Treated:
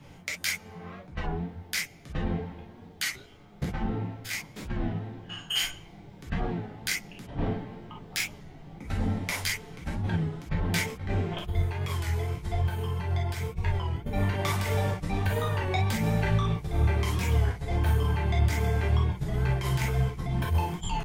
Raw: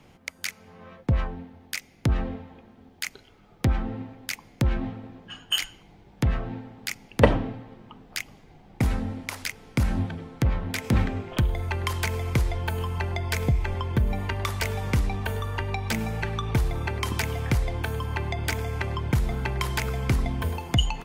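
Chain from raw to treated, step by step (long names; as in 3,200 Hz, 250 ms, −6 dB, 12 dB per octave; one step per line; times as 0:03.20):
0:03.05–0:05.64: spectrum averaged block by block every 50 ms
parametric band 100 Hz +5 dB 1.4 octaves
mains-hum notches 50/100/150/200 Hz
compressor whose output falls as the input rises −27 dBFS, ratio −0.5
flanger 1.9 Hz, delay 0.4 ms, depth 6.9 ms, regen +50%
reverb whose tail is shaped and stops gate 80 ms flat, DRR −3 dB
wow of a warped record 33 1/3 rpm, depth 100 cents
level −1.5 dB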